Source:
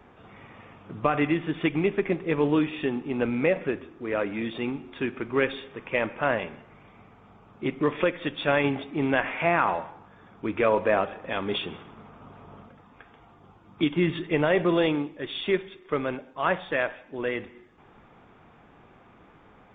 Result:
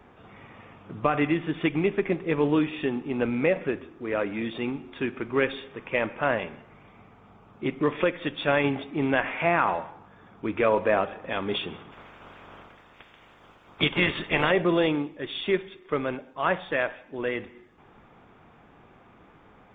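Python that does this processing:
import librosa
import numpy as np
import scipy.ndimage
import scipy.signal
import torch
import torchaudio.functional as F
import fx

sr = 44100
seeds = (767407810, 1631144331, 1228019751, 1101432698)

y = fx.spec_clip(x, sr, under_db=19, at=(11.91, 14.5), fade=0.02)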